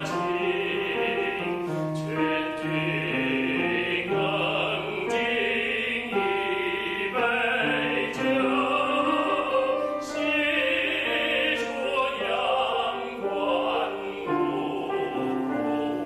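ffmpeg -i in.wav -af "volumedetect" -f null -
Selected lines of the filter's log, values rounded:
mean_volume: -26.2 dB
max_volume: -12.0 dB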